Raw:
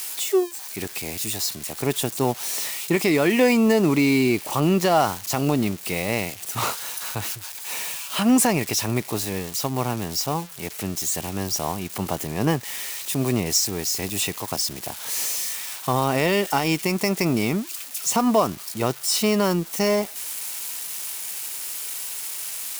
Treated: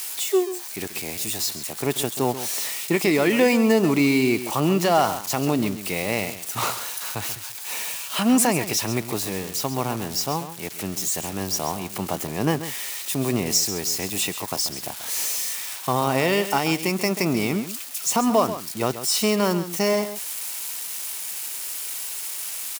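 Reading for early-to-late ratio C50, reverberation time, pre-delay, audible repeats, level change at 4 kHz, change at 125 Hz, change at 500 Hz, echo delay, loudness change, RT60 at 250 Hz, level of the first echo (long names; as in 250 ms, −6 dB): no reverb audible, no reverb audible, no reverb audible, 1, +0.5 dB, −2.0 dB, 0.0 dB, 135 ms, 0.0 dB, no reverb audible, −12.0 dB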